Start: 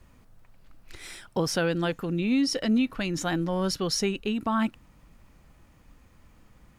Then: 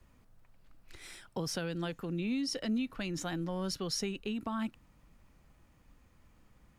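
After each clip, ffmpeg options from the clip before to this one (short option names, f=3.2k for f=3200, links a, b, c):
-filter_complex "[0:a]acrossover=split=210|3000[a][b][c];[b]acompressor=threshold=-28dB:ratio=6[d];[a][d][c]amix=inputs=3:normalize=0,volume=-7dB"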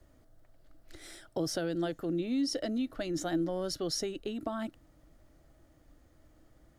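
-af "equalizer=f=200:t=o:w=0.33:g=-9,equalizer=f=315:t=o:w=0.33:g=10,equalizer=f=630:t=o:w=0.33:g=10,equalizer=f=1k:t=o:w=0.33:g=-8,equalizer=f=2.5k:t=o:w=0.33:g=-10,volume=1dB"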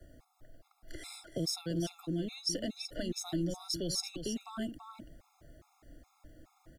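-filter_complex "[0:a]aecho=1:1:334:0.316,acrossover=split=200|3000[a][b][c];[b]acompressor=threshold=-47dB:ratio=3[d];[a][d][c]amix=inputs=3:normalize=0,afftfilt=real='re*gt(sin(2*PI*2.4*pts/sr)*(1-2*mod(floor(b*sr/1024/690),2)),0)':imag='im*gt(sin(2*PI*2.4*pts/sr)*(1-2*mod(floor(b*sr/1024/690),2)),0)':win_size=1024:overlap=0.75,volume=6dB"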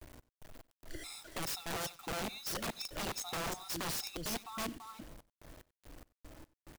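-af "acrusher=bits=8:mix=0:aa=0.000001,aeval=exprs='(mod(42.2*val(0)+1,2)-1)/42.2':c=same,aecho=1:1:93:0.0841"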